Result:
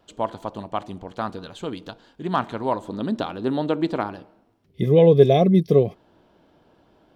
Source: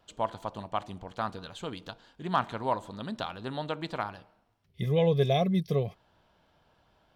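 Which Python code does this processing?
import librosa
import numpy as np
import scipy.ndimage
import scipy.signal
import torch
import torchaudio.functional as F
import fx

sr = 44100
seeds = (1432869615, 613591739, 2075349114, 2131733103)

y = fx.peak_eq(x, sr, hz=320.0, db=fx.steps((0.0, 7.5), (2.88, 14.5)), octaves=1.6)
y = F.gain(torch.from_numpy(y), 2.5).numpy()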